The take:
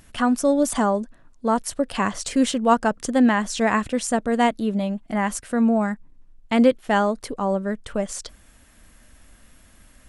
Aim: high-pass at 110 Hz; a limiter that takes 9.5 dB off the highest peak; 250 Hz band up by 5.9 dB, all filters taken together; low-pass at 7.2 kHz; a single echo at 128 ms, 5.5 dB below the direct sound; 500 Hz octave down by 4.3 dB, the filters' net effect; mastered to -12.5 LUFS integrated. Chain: high-pass 110 Hz; low-pass 7.2 kHz; peaking EQ 250 Hz +8 dB; peaking EQ 500 Hz -7 dB; peak limiter -13 dBFS; delay 128 ms -5.5 dB; trim +8.5 dB

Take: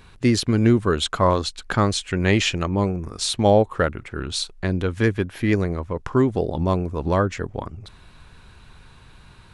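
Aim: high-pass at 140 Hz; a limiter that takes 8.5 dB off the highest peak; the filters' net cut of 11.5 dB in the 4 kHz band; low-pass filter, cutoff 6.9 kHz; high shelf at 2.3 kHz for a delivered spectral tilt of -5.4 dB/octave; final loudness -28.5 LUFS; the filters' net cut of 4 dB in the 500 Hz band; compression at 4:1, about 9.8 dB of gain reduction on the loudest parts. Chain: high-pass 140 Hz; low-pass 6.9 kHz; peaking EQ 500 Hz -4.5 dB; treble shelf 2.3 kHz -8 dB; peaking EQ 4 kHz -6.5 dB; compression 4:1, threshold -26 dBFS; trim +6 dB; peak limiter -15.5 dBFS

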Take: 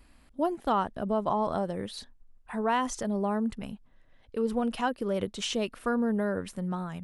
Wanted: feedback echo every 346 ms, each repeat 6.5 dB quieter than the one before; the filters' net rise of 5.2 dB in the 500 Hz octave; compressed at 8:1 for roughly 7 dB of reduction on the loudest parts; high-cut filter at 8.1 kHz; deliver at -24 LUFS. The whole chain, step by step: low-pass 8.1 kHz; peaking EQ 500 Hz +6.5 dB; compression 8:1, threshold -27 dBFS; feedback delay 346 ms, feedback 47%, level -6.5 dB; trim +8.5 dB

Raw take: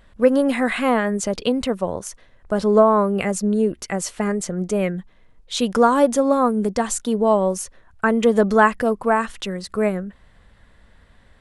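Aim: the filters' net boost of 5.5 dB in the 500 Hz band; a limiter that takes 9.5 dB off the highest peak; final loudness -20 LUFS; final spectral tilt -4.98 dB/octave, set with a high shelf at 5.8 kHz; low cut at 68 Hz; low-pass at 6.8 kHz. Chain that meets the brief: high-pass 68 Hz; low-pass 6.8 kHz; peaking EQ 500 Hz +6.5 dB; treble shelf 5.8 kHz +6.5 dB; trim -1 dB; peak limiter -9 dBFS

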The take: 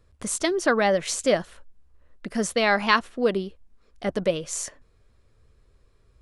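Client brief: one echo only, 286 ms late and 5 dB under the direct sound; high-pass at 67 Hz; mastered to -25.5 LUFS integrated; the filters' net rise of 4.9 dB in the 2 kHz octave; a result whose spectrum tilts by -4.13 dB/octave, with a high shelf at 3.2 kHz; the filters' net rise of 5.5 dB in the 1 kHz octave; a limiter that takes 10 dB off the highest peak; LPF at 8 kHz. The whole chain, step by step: high-pass 67 Hz; low-pass 8 kHz; peaking EQ 1 kHz +6 dB; peaking EQ 2 kHz +6 dB; treble shelf 3.2 kHz -7 dB; peak limiter -10.5 dBFS; delay 286 ms -5 dB; trim -1.5 dB

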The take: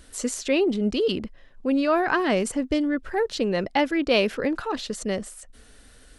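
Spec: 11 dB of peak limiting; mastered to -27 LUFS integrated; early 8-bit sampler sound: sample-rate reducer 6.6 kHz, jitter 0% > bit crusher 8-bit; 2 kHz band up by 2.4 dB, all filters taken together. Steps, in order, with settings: peaking EQ 2 kHz +3 dB; peak limiter -18.5 dBFS; sample-rate reducer 6.6 kHz, jitter 0%; bit crusher 8-bit; trim +0.5 dB

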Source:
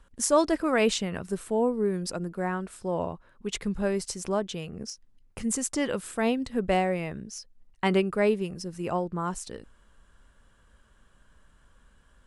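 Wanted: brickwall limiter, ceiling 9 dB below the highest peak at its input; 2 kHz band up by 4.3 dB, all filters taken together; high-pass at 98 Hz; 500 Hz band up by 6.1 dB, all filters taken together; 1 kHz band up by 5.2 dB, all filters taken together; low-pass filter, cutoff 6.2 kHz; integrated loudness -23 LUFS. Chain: high-pass 98 Hz; low-pass 6.2 kHz; peaking EQ 500 Hz +6.5 dB; peaking EQ 1 kHz +3.5 dB; peaking EQ 2 kHz +4 dB; trim +3 dB; peak limiter -10.5 dBFS

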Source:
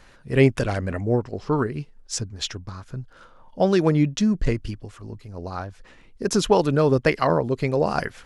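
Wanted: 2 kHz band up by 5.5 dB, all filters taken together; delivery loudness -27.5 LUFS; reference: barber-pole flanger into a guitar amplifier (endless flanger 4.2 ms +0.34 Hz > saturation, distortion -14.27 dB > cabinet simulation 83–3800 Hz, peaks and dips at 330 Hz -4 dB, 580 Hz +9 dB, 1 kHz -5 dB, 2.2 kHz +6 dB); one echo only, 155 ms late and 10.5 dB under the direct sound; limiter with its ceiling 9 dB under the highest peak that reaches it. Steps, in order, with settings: peaking EQ 2 kHz +3 dB; peak limiter -12 dBFS; delay 155 ms -10.5 dB; endless flanger 4.2 ms +0.34 Hz; saturation -20 dBFS; cabinet simulation 83–3800 Hz, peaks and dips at 330 Hz -4 dB, 580 Hz +9 dB, 1 kHz -5 dB, 2.2 kHz +6 dB; trim +1.5 dB

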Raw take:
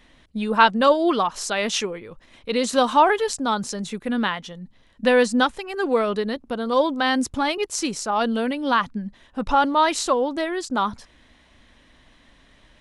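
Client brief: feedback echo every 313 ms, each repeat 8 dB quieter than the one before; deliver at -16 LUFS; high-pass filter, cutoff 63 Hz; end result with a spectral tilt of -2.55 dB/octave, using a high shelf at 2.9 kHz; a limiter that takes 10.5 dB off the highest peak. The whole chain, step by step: high-pass 63 Hz; treble shelf 2.9 kHz +6 dB; peak limiter -10.5 dBFS; feedback delay 313 ms, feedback 40%, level -8 dB; trim +6 dB

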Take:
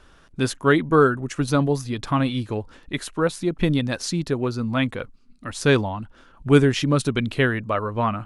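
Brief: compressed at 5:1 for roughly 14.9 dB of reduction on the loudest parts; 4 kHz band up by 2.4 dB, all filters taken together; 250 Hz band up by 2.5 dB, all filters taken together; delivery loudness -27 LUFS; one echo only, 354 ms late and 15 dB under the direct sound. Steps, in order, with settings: peaking EQ 250 Hz +3 dB; peaking EQ 4 kHz +3 dB; compression 5:1, threshold -25 dBFS; delay 354 ms -15 dB; trim +3 dB

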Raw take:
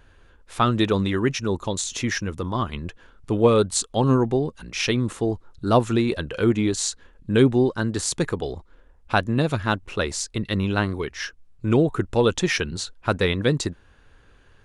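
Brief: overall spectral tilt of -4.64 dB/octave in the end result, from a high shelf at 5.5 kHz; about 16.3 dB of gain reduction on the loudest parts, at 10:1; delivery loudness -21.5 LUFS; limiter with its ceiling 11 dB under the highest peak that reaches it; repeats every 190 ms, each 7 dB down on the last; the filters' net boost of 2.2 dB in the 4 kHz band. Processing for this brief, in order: peaking EQ 4 kHz +6 dB; treble shelf 5.5 kHz -9 dB; compression 10:1, threshold -28 dBFS; peak limiter -27 dBFS; feedback delay 190 ms, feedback 45%, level -7 dB; trim +15 dB

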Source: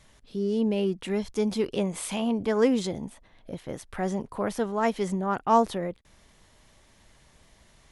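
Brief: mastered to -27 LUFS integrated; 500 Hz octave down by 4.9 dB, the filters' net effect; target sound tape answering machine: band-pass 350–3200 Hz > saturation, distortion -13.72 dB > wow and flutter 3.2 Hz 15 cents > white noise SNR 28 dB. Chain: band-pass 350–3200 Hz; peaking EQ 500 Hz -4.5 dB; saturation -18.5 dBFS; wow and flutter 3.2 Hz 15 cents; white noise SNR 28 dB; trim +7 dB

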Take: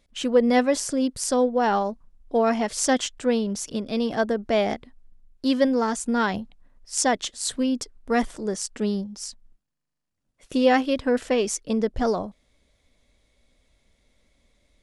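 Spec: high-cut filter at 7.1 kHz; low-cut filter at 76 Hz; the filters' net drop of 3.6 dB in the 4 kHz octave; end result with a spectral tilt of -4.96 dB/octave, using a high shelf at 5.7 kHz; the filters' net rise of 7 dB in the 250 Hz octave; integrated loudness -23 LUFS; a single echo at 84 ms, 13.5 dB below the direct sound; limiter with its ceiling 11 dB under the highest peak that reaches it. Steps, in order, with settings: high-pass 76 Hz; low-pass 7.1 kHz; peaking EQ 250 Hz +7.5 dB; peaking EQ 4 kHz -6 dB; treble shelf 5.7 kHz +3.5 dB; peak limiter -15.5 dBFS; delay 84 ms -13.5 dB; trim +1.5 dB

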